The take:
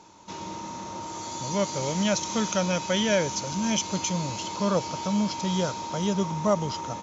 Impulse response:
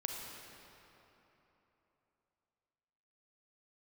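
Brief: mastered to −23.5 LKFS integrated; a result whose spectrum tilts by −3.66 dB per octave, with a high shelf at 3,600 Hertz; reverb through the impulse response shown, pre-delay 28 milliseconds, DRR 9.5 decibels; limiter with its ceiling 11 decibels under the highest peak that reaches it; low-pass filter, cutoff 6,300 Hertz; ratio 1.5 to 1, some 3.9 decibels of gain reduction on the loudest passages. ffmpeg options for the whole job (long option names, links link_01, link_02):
-filter_complex "[0:a]lowpass=6300,highshelf=frequency=3600:gain=7,acompressor=threshold=-29dB:ratio=1.5,alimiter=limit=-22dB:level=0:latency=1,asplit=2[link_01][link_02];[1:a]atrim=start_sample=2205,adelay=28[link_03];[link_02][link_03]afir=irnorm=-1:irlink=0,volume=-11dB[link_04];[link_01][link_04]amix=inputs=2:normalize=0,volume=7.5dB"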